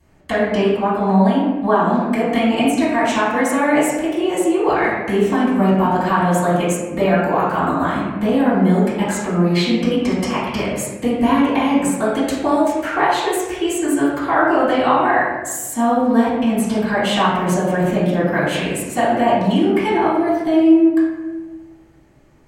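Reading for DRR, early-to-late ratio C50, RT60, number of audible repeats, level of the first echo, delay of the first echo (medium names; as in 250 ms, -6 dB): -14.0 dB, -0.5 dB, 1.3 s, no echo, no echo, no echo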